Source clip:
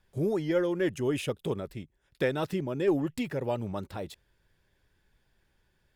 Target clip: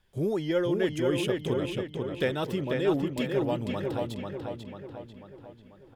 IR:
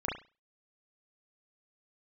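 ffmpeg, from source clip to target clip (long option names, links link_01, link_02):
-filter_complex "[0:a]equalizer=frequency=3200:width=4.4:gain=6,asplit=2[link_01][link_02];[link_02]adelay=492,lowpass=frequency=4300:poles=1,volume=-3.5dB,asplit=2[link_03][link_04];[link_04]adelay=492,lowpass=frequency=4300:poles=1,volume=0.52,asplit=2[link_05][link_06];[link_06]adelay=492,lowpass=frequency=4300:poles=1,volume=0.52,asplit=2[link_07][link_08];[link_08]adelay=492,lowpass=frequency=4300:poles=1,volume=0.52,asplit=2[link_09][link_10];[link_10]adelay=492,lowpass=frequency=4300:poles=1,volume=0.52,asplit=2[link_11][link_12];[link_12]adelay=492,lowpass=frequency=4300:poles=1,volume=0.52,asplit=2[link_13][link_14];[link_14]adelay=492,lowpass=frequency=4300:poles=1,volume=0.52[link_15];[link_03][link_05][link_07][link_09][link_11][link_13][link_15]amix=inputs=7:normalize=0[link_16];[link_01][link_16]amix=inputs=2:normalize=0"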